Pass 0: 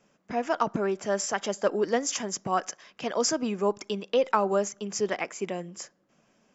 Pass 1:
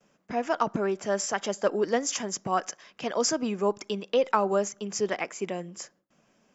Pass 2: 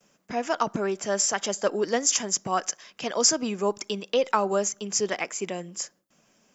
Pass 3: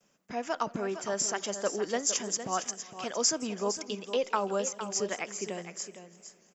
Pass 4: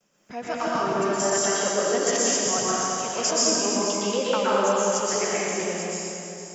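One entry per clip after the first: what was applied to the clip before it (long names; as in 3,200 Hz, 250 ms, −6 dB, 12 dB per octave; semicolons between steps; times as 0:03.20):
noise gate with hold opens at −59 dBFS
high-shelf EQ 4,000 Hz +11 dB
single-tap delay 460 ms −10.5 dB; feedback echo with a swinging delay time 167 ms, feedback 71%, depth 130 cents, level −22 dB; level −6 dB
dense smooth reverb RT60 2.7 s, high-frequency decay 0.8×, pre-delay 105 ms, DRR −8.5 dB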